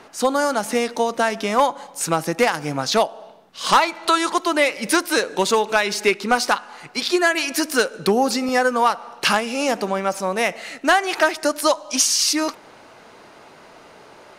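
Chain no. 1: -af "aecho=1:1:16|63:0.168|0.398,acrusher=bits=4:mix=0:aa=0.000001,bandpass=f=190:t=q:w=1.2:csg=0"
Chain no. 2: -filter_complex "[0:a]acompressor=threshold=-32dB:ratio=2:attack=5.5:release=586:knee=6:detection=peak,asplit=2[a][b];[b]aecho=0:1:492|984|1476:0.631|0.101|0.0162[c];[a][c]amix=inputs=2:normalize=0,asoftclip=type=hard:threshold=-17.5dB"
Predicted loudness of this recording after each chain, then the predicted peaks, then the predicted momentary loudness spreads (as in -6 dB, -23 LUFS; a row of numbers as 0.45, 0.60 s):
-29.5, -29.0 LUFS; -11.5, -17.5 dBFS; 9, 6 LU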